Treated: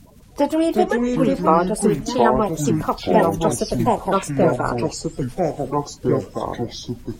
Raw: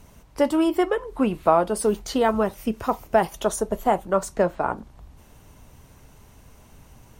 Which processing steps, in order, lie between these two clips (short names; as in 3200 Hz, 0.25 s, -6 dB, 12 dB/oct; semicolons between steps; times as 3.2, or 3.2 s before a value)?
bin magnitudes rounded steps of 30 dB; echoes that change speed 0.226 s, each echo -5 st, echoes 2; gain +2.5 dB